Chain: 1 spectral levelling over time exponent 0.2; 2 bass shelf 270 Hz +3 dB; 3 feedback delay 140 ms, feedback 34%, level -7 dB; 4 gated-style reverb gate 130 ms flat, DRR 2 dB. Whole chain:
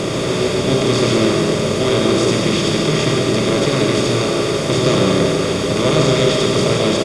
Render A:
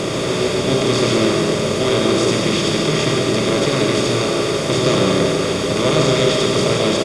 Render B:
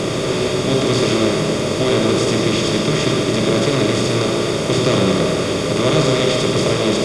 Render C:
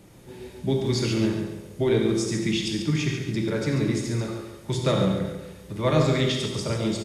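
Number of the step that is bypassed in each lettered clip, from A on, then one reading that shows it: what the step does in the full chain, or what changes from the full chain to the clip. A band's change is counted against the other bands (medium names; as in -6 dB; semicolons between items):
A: 2, 125 Hz band -2.0 dB; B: 3, echo-to-direct 0.0 dB to -2.0 dB; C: 1, 125 Hz band +5.5 dB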